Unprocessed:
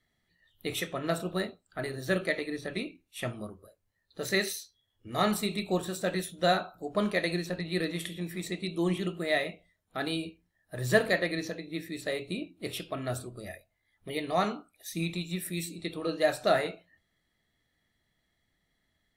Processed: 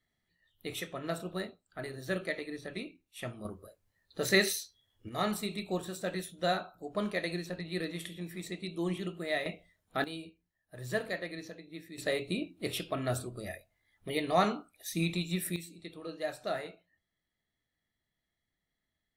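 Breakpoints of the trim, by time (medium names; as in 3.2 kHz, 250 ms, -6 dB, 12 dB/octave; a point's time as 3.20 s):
-5.5 dB
from 3.45 s +2.5 dB
from 5.09 s -5 dB
from 9.46 s +2 dB
from 10.04 s -9.5 dB
from 11.98 s +1 dB
from 15.56 s -10 dB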